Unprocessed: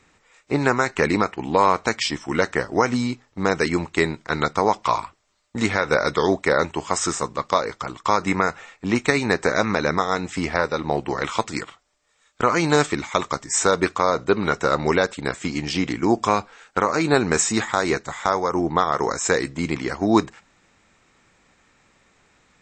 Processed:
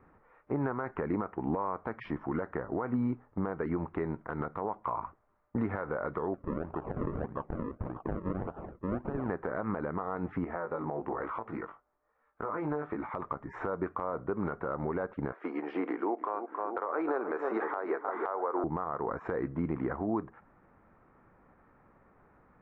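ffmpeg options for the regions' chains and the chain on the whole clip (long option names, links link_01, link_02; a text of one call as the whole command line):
ffmpeg -i in.wav -filter_complex "[0:a]asettb=1/sr,asplit=3[link_01][link_02][link_03];[link_01]atrim=end=6.344[link_04];[link_02]atrim=start=6.34:end=9.3,asetpts=PTS-STARTPTS,afade=type=in:duration=0.004:curve=qsin,afade=type=out:start_time=2.956:duration=0.004:curve=qsin,acompressor=threshold=-33dB:ratio=2.5:attack=3.2:release=140:knee=1:detection=peak,acrusher=samples=40:mix=1:aa=0.000001:lfo=1:lforange=40:lforate=1.7[link_05];[link_03]atrim=start=9.296[link_06];[link_04][link_05]acrossfade=duration=0.004:curve1=hsin:curve2=qsin[link_07];[link_07][link_06]acrossfade=duration=0.004:curve1=qsin:curve2=hsin,asettb=1/sr,asplit=3[link_08][link_09][link_10];[link_08]atrim=end=10.444[link_11];[link_09]atrim=start=10.44:end=13.08,asetpts=PTS-STARTPTS,afade=type=in:duration=0.004:curve=qsin,afade=type=out:start_time=2.636:duration=0.004:curve=qsin,flanger=delay=17:depth=3.1:speed=1.1,bass=frequency=250:gain=-6,treble=frequency=4000:gain=-5,acompressor=threshold=-29dB:ratio=6:attack=3.2:release=140:knee=1:detection=peak[link_12];[link_10]atrim=start=13.076[link_13];[link_11][link_12]acrossfade=duration=0.004:curve1=hsin:curve2=qsin[link_14];[link_14][link_13]acrossfade=duration=0.004:curve1=qsin:curve2=hsin,asettb=1/sr,asplit=3[link_15][link_16][link_17];[link_15]atrim=end=15.324[link_18];[link_16]atrim=start=15.32:end=18.64,asetpts=PTS-STARTPTS,afade=type=in:duration=0.004:curve=qsin,afade=type=out:start_time=3.316:duration=0.004:curve=qsin,highpass=frequency=360:width=0.5412,highpass=frequency=360:width=1.3066,asplit=2[link_19][link_20];[link_20]adelay=308,lowpass=frequency=1700:poles=1,volume=-10.5dB,asplit=2[link_21][link_22];[link_22]adelay=308,lowpass=frequency=1700:poles=1,volume=0.48,asplit=2[link_23][link_24];[link_24]adelay=308,lowpass=frequency=1700:poles=1,volume=0.48,asplit=2[link_25][link_26];[link_26]adelay=308,lowpass=frequency=1700:poles=1,volume=0.48,asplit=2[link_27][link_28];[link_28]adelay=308,lowpass=frequency=1700:poles=1,volume=0.48[link_29];[link_19][link_21][link_23][link_25][link_27][link_29]amix=inputs=6:normalize=0,atrim=end_sample=146412[link_30];[link_17]atrim=start=18.636[link_31];[link_18][link_30]acrossfade=duration=0.004:curve1=hsin:curve2=qsin[link_32];[link_32][link_31]acrossfade=duration=0.004:curve1=qsin:curve2=hsin,lowpass=frequency=1400:width=0.5412,lowpass=frequency=1400:width=1.3066,acompressor=threshold=-26dB:ratio=6,alimiter=limit=-21.5dB:level=0:latency=1:release=85" out.wav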